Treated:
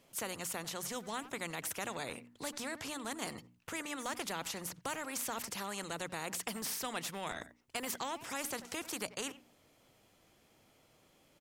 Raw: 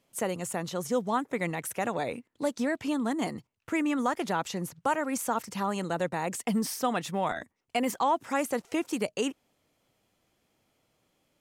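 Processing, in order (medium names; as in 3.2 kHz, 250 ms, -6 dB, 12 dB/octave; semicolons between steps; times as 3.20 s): hum notches 60/120/180/240/300 Hz; speakerphone echo 90 ms, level -24 dB; spectrum-flattening compressor 2:1; trim -6.5 dB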